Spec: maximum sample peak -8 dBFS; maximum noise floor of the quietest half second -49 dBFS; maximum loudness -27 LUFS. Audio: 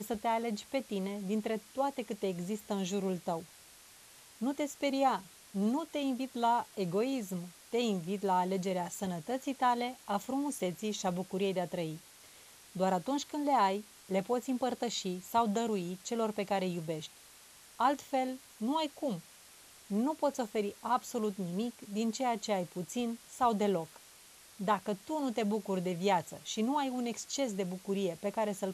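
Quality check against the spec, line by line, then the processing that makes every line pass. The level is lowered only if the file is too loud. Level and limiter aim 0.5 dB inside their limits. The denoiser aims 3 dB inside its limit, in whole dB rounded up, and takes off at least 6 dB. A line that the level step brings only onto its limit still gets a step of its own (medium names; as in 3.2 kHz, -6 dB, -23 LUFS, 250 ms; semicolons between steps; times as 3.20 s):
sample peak -16.0 dBFS: pass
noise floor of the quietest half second -57 dBFS: pass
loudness -34.5 LUFS: pass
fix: none needed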